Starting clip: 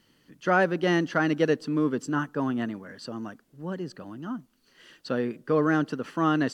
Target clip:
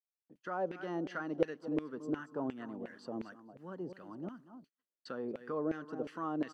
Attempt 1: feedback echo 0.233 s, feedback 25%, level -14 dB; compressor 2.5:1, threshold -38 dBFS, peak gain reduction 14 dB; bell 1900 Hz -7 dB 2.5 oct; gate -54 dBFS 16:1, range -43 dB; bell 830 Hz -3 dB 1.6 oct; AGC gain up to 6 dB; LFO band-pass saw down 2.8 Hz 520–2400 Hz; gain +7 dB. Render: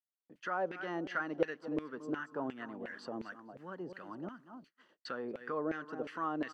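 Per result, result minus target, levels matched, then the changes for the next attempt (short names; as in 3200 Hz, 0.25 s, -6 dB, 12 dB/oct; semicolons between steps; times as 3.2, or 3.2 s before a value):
2000 Hz band +6.0 dB; compressor: peak gain reduction +4 dB
change: first bell 1900 Hz -18 dB 2.5 oct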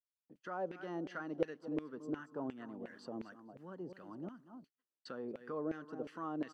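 compressor: peak gain reduction +4 dB
change: compressor 2.5:1, threshold -31.5 dBFS, peak gain reduction 10 dB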